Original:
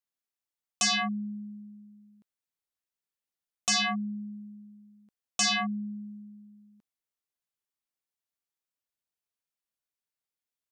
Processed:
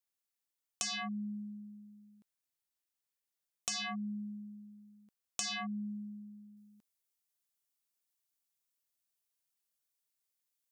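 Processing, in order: treble shelf 4.2 kHz +6.5 dB, from 6.57 s +11.5 dB; compression 16:1, threshold -32 dBFS, peak gain reduction 13 dB; trim -3 dB

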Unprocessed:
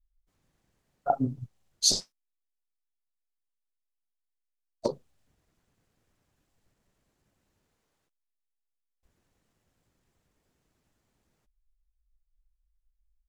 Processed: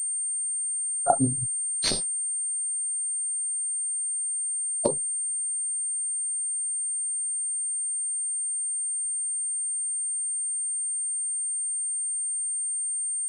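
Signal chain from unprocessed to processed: class-D stage that switches slowly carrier 8.7 kHz; trim +4 dB

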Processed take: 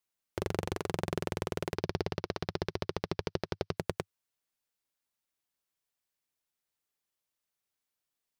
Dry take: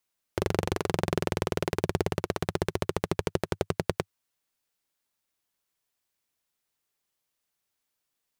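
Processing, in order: 1.75–3.77 s: resonant high shelf 6.3 kHz -8 dB, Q 3; trim -6 dB

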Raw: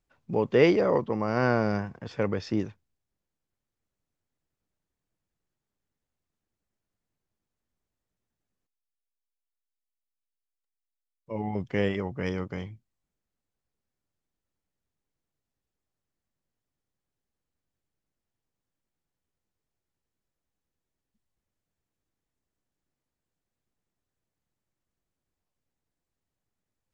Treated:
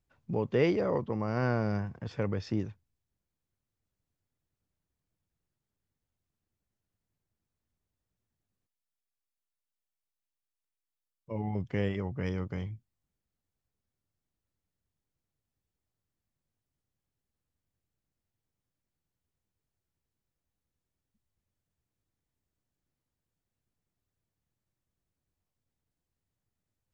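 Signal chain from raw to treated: peaking EQ 88 Hz +8 dB 2 oct; in parallel at -0.5 dB: compression, threshold -30 dBFS, peak gain reduction 15.5 dB; on the sum: trim -9 dB

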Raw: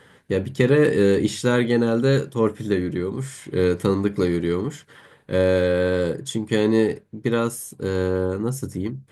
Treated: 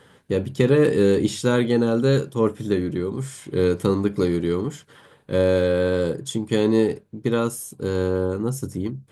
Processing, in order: peaking EQ 1.9 kHz -5.5 dB 0.51 oct

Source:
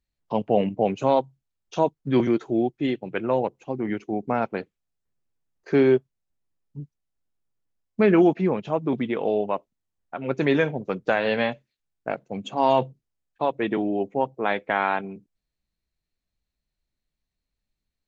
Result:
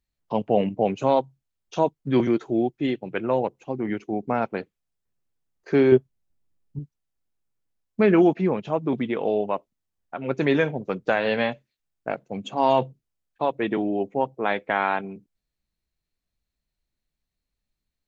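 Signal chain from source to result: 5.92–6.79 s: bass shelf 420 Hz +7 dB

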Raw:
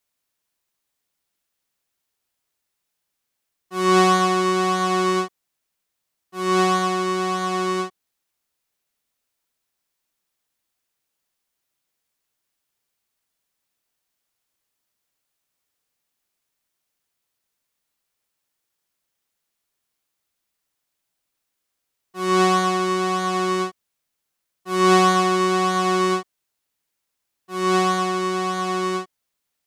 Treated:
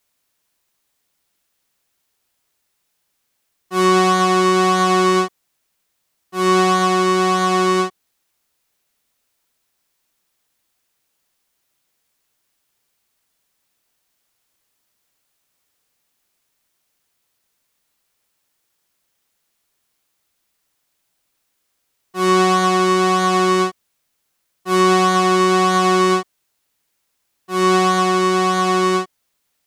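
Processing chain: compression, threshold -19 dBFS, peak gain reduction 8 dB; trim +8 dB

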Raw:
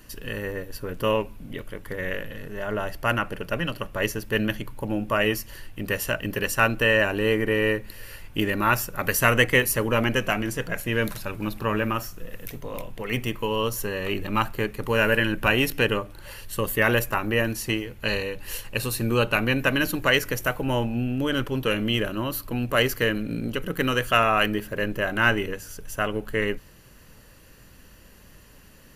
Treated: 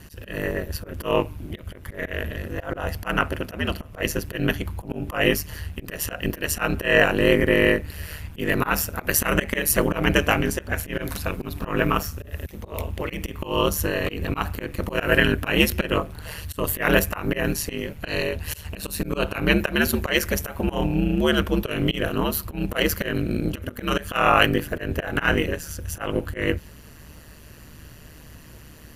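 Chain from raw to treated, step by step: ring modulator 76 Hz; hum 60 Hz, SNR 29 dB; slow attack 155 ms; trim +7.5 dB

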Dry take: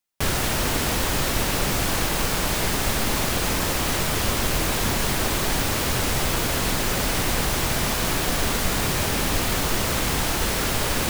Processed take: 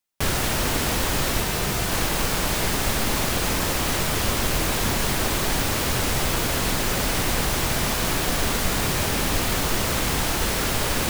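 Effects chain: 1.40–1.92 s: comb of notches 280 Hz

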